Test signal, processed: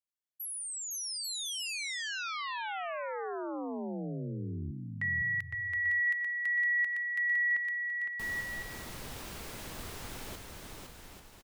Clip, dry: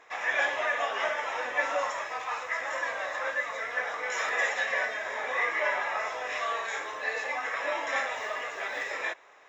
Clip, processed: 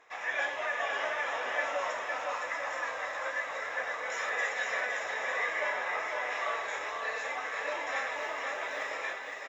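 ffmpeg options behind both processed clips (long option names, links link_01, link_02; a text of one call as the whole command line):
ffmpeg -i in.wav -af "aecho=1:1:510|841.5|1057|1197|1288:0.631|0.398|0.251|0.158|0.1,volume=-5dB" out.wav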